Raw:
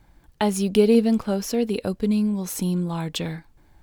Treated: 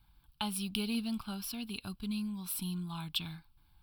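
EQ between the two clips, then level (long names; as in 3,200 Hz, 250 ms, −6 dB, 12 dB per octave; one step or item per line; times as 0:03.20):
guitar amp tone stack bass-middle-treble 5-5-5
phaser with its sweep stopped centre 1,900 Hz, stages 6
+4.5 dB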